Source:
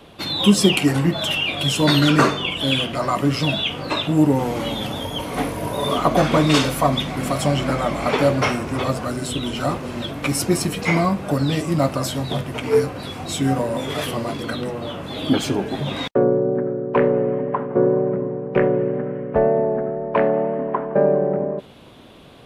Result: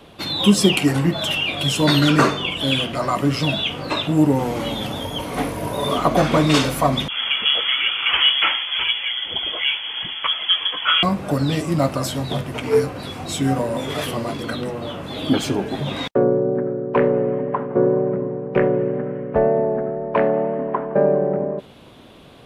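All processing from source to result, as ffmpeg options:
-filter_complex "[0:a]asettb=1/sr,asplit=3[a][b][c];[a]atrim=end=7.084[d];[b]atrim=start=7.08:end=11.03,asetpts=PTS-STARTPTS,afade=t=in:d=0.004:c=qsin,afade=t=out:st=3.946:d=0.004:c=qsin,adynamicequalizer=threshold=0.0141:dfrequency=1700:dqfactor=1.2:tfrequency=1700:tqfactor=1.2:attack=5:release=100:ratio=0.375:range=2:mode=boostabove:tftype=bell,lowpass=f=3k:t=q:w=0.5098,lowpass=f=3k:t=q:w=0.6013,lowpass=f=3k:t=q:w=0.9,lowpass=f=3k:t=q:w=2.563,afreqshift=-3500[e];[c]atrim=start=11.026[f];[d][e]acrossfade=d=0.004:c1=hsin:c2=qsin[g];[g][f]acrossfade=d=0.004:c1=qsin:c2=hsin"

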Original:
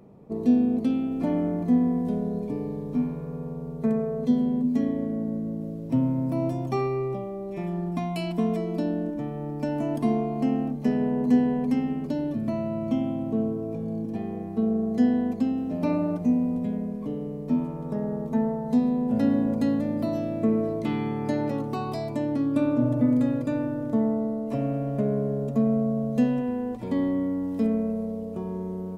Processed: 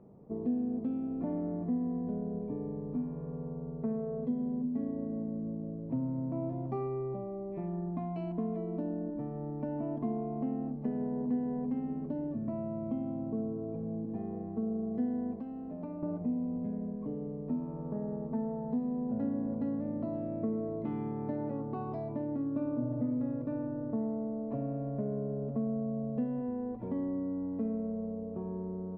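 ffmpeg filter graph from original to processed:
-filter_complex "[0:a]asettb=1/sr,asplit=3[a][b][c];[a]atrim=end=15.364[d];[b]atrim=start=15.36:end=16.03,asetpts=PTS-STARTPTS,afade=t=in:d=0.004:c=qsin,afade=t=out:st=0.666:d=0.004:c=qsin,acrossover=split=150|570[e][f][g];[e]acompressor=threshold=-46dB:ratio=4[h];[f]acompressor=threshold=-38dB:ratio=4[i];[g]acompressor=threshold=-44dB:ratio=4[j];[h][i][j]amix=inputs=3:normalize=0,equalizer=f=100:t=o:w=0.35:g=-5[k];[c]atrim=start=16.026[l];[d][k]acrossfade=d=0.004:c1=hsin:c2=qsin[m];[m][l]acrossfade=d=0.004:c1=qsin:c2=hsin,lowpass=1.1k,acompressor=threshold=-29dB:ratio=2,volume=-5dB"

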